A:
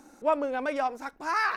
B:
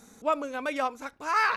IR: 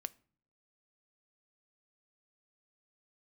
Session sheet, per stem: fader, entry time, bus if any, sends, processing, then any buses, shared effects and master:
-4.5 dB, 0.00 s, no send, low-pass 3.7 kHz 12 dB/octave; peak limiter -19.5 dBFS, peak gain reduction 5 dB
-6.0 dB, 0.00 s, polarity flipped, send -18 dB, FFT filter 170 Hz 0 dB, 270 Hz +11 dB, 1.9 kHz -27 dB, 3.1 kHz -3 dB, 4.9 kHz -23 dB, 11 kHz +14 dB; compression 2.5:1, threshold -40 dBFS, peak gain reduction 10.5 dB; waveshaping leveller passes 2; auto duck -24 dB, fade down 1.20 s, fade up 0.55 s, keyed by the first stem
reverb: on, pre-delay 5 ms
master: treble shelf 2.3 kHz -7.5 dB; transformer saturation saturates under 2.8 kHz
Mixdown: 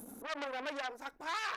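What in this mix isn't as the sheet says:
stem A: missing low-pass 3.7 kHz 12 dB/octave; master: missing treble shelf 2.3 kHz -7.5 dB

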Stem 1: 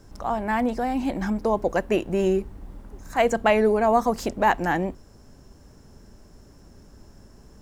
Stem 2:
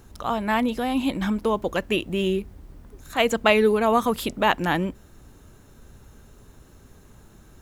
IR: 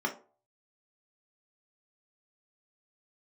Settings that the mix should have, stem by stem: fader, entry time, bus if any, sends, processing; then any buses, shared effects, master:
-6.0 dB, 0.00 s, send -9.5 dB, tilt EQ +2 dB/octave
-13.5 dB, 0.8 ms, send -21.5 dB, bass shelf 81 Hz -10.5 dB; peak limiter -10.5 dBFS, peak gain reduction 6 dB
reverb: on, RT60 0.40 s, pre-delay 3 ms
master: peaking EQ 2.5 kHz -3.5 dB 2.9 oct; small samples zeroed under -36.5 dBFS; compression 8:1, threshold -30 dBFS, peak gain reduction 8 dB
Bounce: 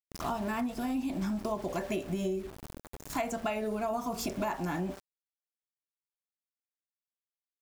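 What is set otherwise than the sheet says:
stem 1 -6.0 dB -> +2.5 dB; stem 2 -13.5 dB -> -3.5 dB

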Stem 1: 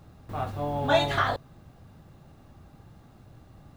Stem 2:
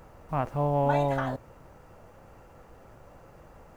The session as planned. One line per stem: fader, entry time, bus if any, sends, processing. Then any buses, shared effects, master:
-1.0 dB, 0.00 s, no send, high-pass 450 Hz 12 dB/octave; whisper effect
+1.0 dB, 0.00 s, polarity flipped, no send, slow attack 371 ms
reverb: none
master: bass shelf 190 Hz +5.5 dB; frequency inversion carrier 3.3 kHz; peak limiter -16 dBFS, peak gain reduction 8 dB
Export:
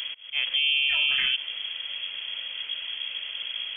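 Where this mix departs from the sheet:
stem 1 -1.0 dB -> -11.0 dB; stem 2 +1.0 dB -> +13.0 dB

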